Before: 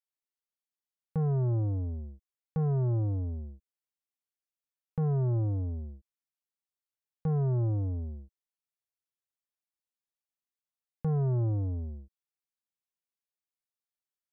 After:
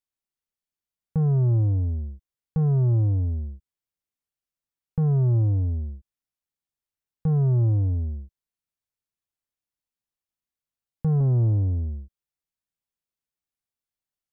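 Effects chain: 11.20–11.87 s: comb filter that takes the minimum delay 0.36 ms; bass shelf 210 Hz +10.5 dB

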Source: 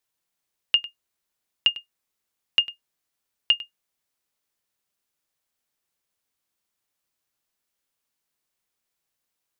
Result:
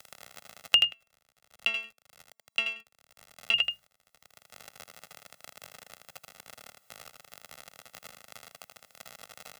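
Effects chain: high-pass 55 Hz; treble shelf 2.2 kHz -7.5 dB; hum notches 60/120/180 Hz; 0.84–3.54 s: inharmonic resonator 220 Hz, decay 0.4 s, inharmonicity 0.002; gate -59 dBFS, range -23 dB; treble shelf 4.5 kHz +6.5 dB; crackle 35 per s -61 dBFS; comb 1.5 ms, depth 94%; delay 80 ms -6.5 dB; loudness maximiser +17.5 dB; three bands compressed up and down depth 70%

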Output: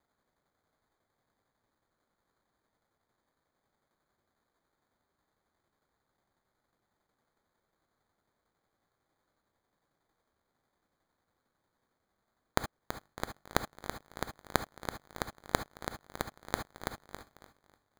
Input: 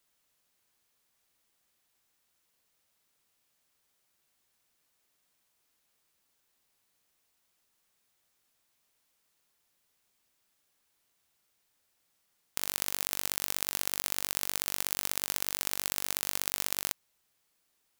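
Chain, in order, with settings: feedback echo behind a high-pass 358 ms, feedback 37%, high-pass 3.4 kHz, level -12 dB; sample-and-hold 16×; gated-style reverb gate 90 ms rising, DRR 9 dB; tremolo saw down 11 Hz, depth 45%; trim -4 dB

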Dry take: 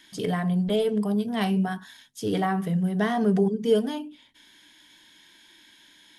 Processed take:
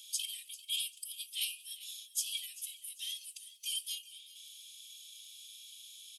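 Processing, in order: rippled Chebyshev high-pass 2.4 kHz, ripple 3 dB; differentiator; formant-preserving pitch shift +1 st; on a send: feedback delay 394 ms, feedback 33%, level -17 dB; on the sum: trim +10 dB

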